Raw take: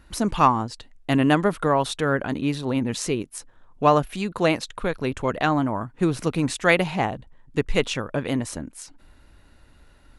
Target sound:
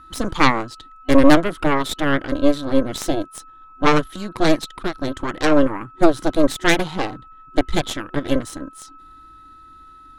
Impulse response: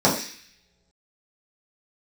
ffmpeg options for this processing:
-af "aeval=exprs='val(0)+0.00891*sin(2*PI*1300*n/s)':channel_layout=same,superequalizer=6b=2.51:7b=0.631:8b=0.316:12b=0.316:13b=1.78,aeval=exprs='0.794*(cos(1*acos(clip(val(0)/0.794,-1,1)))-cos(1*PI/2))+0.316*(cos(6*acos(clip(val(0)/0.794,-1,1)))-cos(6*PI/2))':channel_layout=same,volume=-1.5dB"

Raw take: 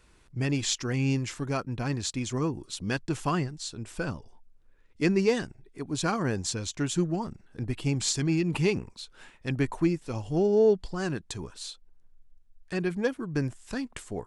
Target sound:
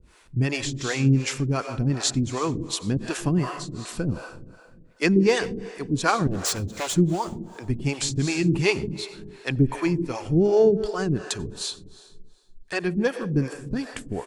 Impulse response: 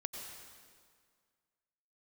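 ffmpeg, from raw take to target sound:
-filter_complex "[0:a]asplit=2[link_01][link_02];[link_02]adelay=160,highpass=300,lowpass=3400,asoftclip=type=hard:threshold=-20dB,volume=-16dB[link_03];[link_01][link_03]amix=inputs=2:normalize=0,asettb=1/sr,asplit=3[link_04][link_05][link_06];[link_04]atrim=end=6.274[link_07];[link_05]atrim=start=6.27:end=6.95,asetpts=PTS-STARTPTS,afade=type=in:duration=0.004:curve=qsin,afade=type=out:start_time=0.676:duration=0.004:curve=qsin,aeval=exprs='0.0376*(abs(mod(val(0)/0.0376+3,4)-2)-1)':channel_layout=same[link_08];[link_06]atrim=start=6.946[link_09];[link_07][link_08]acrossfade=duration=0.004:curve1=hsin:curve2=qsin[link_10];[link_10][link_09]acrossfade=duration=0.004:curve1=qsin:curve2=hsin,asplit=2[link_11][link_12];[1:a]atrim=start_sample=2205[link_13];[link_12][link_13]afir=irnorm=-1:irlink=0,volume=-2dB[link_14];[link_11][link_14]amix=inputs=2:normalize=0,acrossover=split=410[link_15][link_16];[link_15]aeval=exprs='val(0)*(1-1/2+1/2*cos(2*PI*2.7*n/s))':channel_layout=same[link_17];[link_16]aeval=exprs='val(0)*(1-1/2-1/2*cos(2*PI*2.7*n/s))':channel_layout=same[link_18];[link_17][link_18]amix=inputs=2:normalize=0,volume=5.5dB"

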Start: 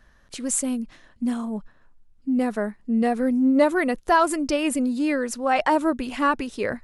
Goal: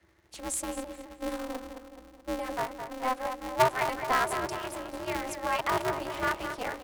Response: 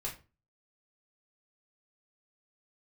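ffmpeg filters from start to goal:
-filter_complex "[0:a]bandreject=frequency=50:width_type=h:width=6,bandreject=frequency=100:width_type=h:width=6,bandreject=frequency=150:width_type=h:width=6,bandreject=frequency=200:width_type=h:width=6,bandreject=frequency=250:width_type=h:width=6,bandreject=frequency=300:width_type=h:width=6,bandreject=frequency=350:width_type=h:width=6,bandreject=frequency=400:width_type=h:width=6,bandreject=frequency=450:width_type=h:width=6,bandreject=frequency=500:width_type=h:width=6,afreqshift=180,asettb=1/sr,asplit=3[link_01][link_02][link_03];[link_01]atrim=end=2.524[link_04];[link_02]atrim=start=2.52:end=3.9,asetpts=PTS-STARTPTS,afade=type=in:duration=0.004:curve=qsin,afade=type=out:start_time=1.376:duration=0.004:curve=qsin,lowshelf=frequency=630:width_type=q:width=3:gain=-7.5[link_05];[link_03]atrim=start=3.896[link_06];[link_04][link_05]acrossfade=duration=0.004:curve1=hsin:curve2=qsin[link_07];[link_07][link_06]acrossfade=duration=0.004:curve1=qsin:curve2=hsin,asplit=3[link_08][link_09][link_10];[link_08]afade=type=out:start_time=4.49:duration=0.02[link_11];[link_09]acompressor=threshold=-28dB:ratio=6,afade=type=in:start_time=4.49:duration=0.02,afade=type=out:start_time=5.06:duration=0.02[link_12];[link_10]afade=type=in:start_time=5.06:duration=0.02[link_13];[link_11][link_12][link_13]amix=inputs=3:normalize=0,asplit=2[link_14][link_15];[link_15]adelay=213,lowpass=frequency=4300:poles=1,volume=-8dB,asplit=2[link_16][link_17];[link_17]adelay=213,lowpass=frequency=4300:poles=1,volume=0.53,asplit=2[link_18][link_19];[link_19]adelay=213,lowpass=frequency=4300:poles=1,volume=0.53,asplit=2[link_20][link_21];[link_21]adelay=213,lowpass=frequency=4300:poles=1,volume=0.53,asplit=2[link_22][link_23];[link_23]adelay=213,lowpass=frequency=4300:poles=1,volume=0.53,asplit=2[link_24][link_25];[link_25]adelay=213,lowpass=frequency=4300:poles=1,volume=0.53[link_26];[link_16][link_18][link_20][link_22][link_24][link_26]amix=inputs=6:normalize=0[link_27];[link_14][link_27]amix=inputs=2:normalize=0,aeval=exprs='val(0)*sgn(sin(2*PI*130*n/s))':channel_layout=same,volume=-8.5dB"

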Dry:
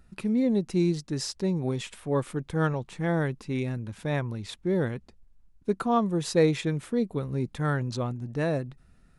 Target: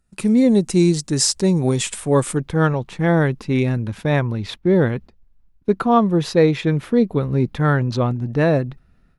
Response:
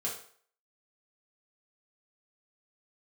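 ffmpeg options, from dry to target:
-af "asetnsamples=nb_out_samples=441:pad=0,asendcmd='2.38 equalizer g -6;4.27 equalizer g -12.5',equalizer=frequency=8300:width_type=o:width=0.97:gain=11,agate=range=-9dB:threshold=-45dB:ratio=16:detection=peak,dynaudnorm=framelen=120:gausssize=3:maxgain=14.5dB,volume=-3dB"

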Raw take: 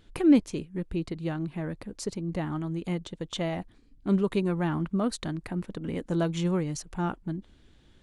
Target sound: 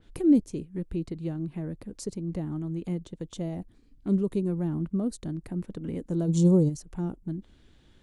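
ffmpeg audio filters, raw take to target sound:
ffmpeg -i in.wav -filter_complex "[0:a]asplit=3[link_01][link_02][link_03];[link_01]afade=type=out:start_time=6.27:duration=0.02[link_04];[link_02]equalizer=frequency=125:width_type=o:width=1:gain=10,equalizer=frequency=250:width_type=o:width=1:gain=4,equalizer=frequency=500:width_type=o:width=1:gain=8,equalizer=frequency=1000:width_type=o:width=1:gain=11,equalizer=frequency=2000:width_type=o:width=1:gain=-9,equalizer=frequency=4000:width_type=o:width=1:gain=11,equalizer=frequency=8000:width_type=o:width=1:gain=11,afade=type=in:start_time=6.27:duration=0.02,afade=type=out:start_time=6.68:duration=0.02[link_05];[link_03]afade=type=in:start_time=6.68:duration=0.02[link_06];[link_04][link_05][link_06]amix=inputs=3:normalize=0,acrossover=split=520|5600[link_07][link_08][link_09];[link_08]acompressor=threshold=-52dB:ratio=6[link_10];[link_07][link_10][link_09]amix=inputs=3:normalize=0,adynamicequalizer=threshold=0.002:dfrequency=2800:dqfactor=0.7:tfrequency=2800:tqfactor=0.7:attack=5:release=100:ratio=0.375:range=2:mode=cutabove:tftype=highshelf" out.wav

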